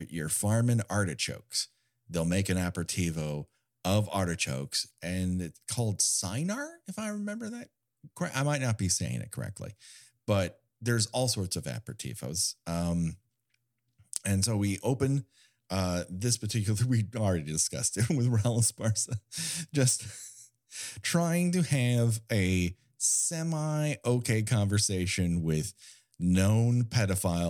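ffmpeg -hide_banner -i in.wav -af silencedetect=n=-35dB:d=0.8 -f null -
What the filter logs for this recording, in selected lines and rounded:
silence_start: 13.12
silence_end: 14.13 | silence_duration: 1.02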